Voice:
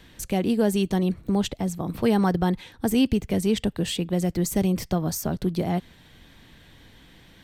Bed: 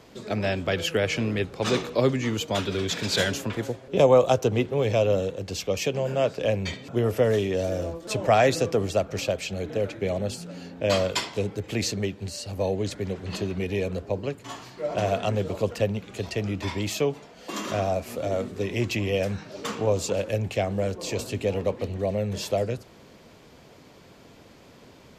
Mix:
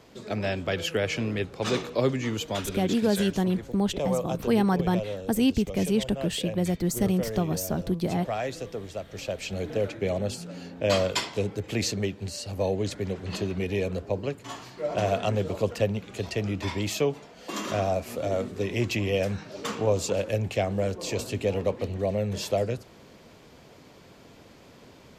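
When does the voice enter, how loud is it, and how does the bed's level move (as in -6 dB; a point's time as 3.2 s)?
2.45 s, -2.0 dB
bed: 2.44 s -2.5 dB
3.15 s -11.5 dB
9.02 s -11.5 dB
9.55 s -0.5 dB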